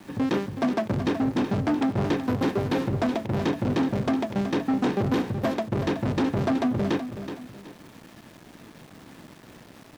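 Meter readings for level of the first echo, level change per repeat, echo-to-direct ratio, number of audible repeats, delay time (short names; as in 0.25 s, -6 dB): -10.0 dB, -9.5 dB, -9.5 dB, 2, 0.374 s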